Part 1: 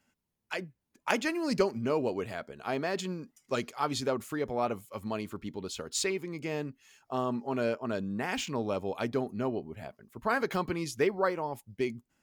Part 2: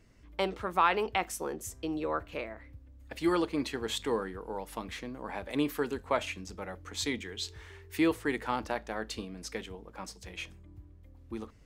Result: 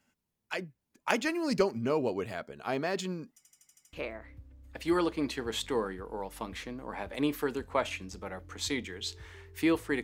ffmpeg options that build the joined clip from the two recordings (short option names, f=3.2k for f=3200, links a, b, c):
-filter_complex "[0:a]apad=whole_dur=10.03,atrim=end=10.03,asplit=7[a][b][c][d][e][f][g];[a]atrim=end=3.452[h];[b]atrim=start=3.368:end=3.452[i];[c]atrim=start=3.368:end=3.452[j];[d]atrim=start=3.368:end=3.452[k];[e]atrim=start=3.368:end=3.452[l];[f]atrim=start=3.368:end=3.452[m];[g]atrim=start=3.368:end=3.452[n];[1:a]atrim=start=2.288:end=8.39[o];[h][i]acrossfade=d=0.004:c1=hsin:c2=hsin[p];[p][j]acrossfade=d=0.004:c1=hsin:c2=hsin[q];[q][k]acrossfade=d=0.004:c1=hsin:c2=hsin[r];[r][l]acrossfade=d=0.004:c1=hsin:c2=hsin[s];[s][m]acrossfade=d=0.004:c1=hsin:c2=hsin[t];[t][n]acrossfade=d=0.004:c1=hsin:c2=hsin[u];[u][o]acrossfade=d=0.004:c1=hsin:c2=hsin"